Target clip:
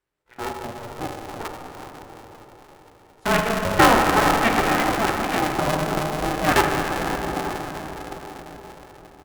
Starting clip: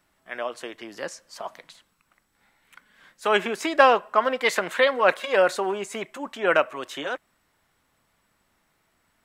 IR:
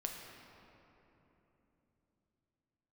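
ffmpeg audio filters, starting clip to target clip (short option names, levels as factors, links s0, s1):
-filter_complex "[0:a]highpass=56,bass=f=250:g=8,treble=f=4000:g=-3,bandreject=f=60:t=h:w=6,bandreject=f=120:t=h:w=6,bandreject=f=180:t=h:w=6,bandreject=f=240:t=h:w=6,bandreject=f=300:t=h:w=6,bandreject=f=360:t=h:w=6,aecho=1:1:880:0.282,asettb=1/sr,asplit=3[s0][s1][s2];[s0]atrim=end=4.724[s3];[s1]atrim=start=4.72:end=5.48,asetpts=PTS-STARTPTS,afade=t=in:d=0.004:c=qsin,afade=t=out:st=0.756:d=0.004:c=qsin,acompressor=threshold=0.0891:ratio=6[s4];[s2]atrim=start=5.476[s5];[s3][s4]acrossfade=d=0.004:c1=hsin:c2=qsin[s6];[s6][s5]acrossfade=d=0.004:c1=qsin:c2=hsin,afwtdn=0.0398,asettb=1/sr,asplit=3[s7][s8][s9];[s7]atrim=end=0.914[s10];[s8]atrim=start=0.91:end=1.43,asetpts=PTS-STARTPTS,afade=t=in:d=0.004:c=qsin,afade=t=out:st=0.516:d=0.004:c=qsin,lowshelf=f=360:g=8.5[s11];[s9]atrim=start=1.426[s12];[s10][s11]acrossfade=d=0.004:c1=hsin:c2=qsin[s13];[s13][s12]acrossfade=d=0.004:c1=qsin:c2=hsin[s14];[1:a]atrim=start_sample=2205,asetrate=26460,aresample=44100[s15];[s14][s15]afir=irnorm=-1:irlink=0,aeval=exprs='val(0)*sgn(sin(2*PI*230*n/s))':c=same"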